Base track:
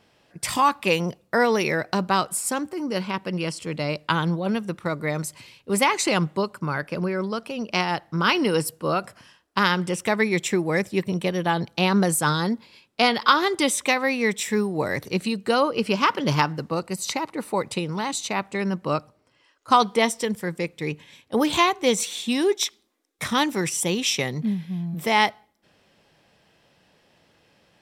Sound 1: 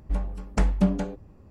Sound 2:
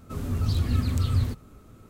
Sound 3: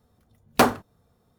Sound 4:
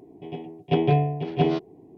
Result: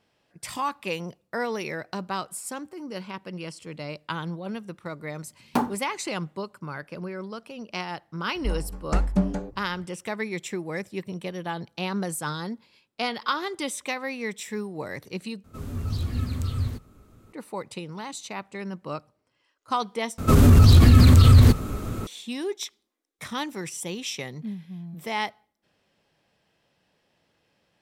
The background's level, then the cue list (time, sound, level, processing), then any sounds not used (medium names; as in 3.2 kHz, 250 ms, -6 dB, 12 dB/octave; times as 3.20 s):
base track -9 dB
4.96 s: add 3 -13.5 dB + small resonant body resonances 210/870 Hz, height 13 dB, ringing for 20 ms
8.35 s: add 1 -1 dB + peaking EQ 2.9 kHz -5.5 dB
15.44 s: replace with 2 -3.5 dB
20.18 s: replace with 2 -5 dB + loudness maximiser +24.5 dB
not used: 4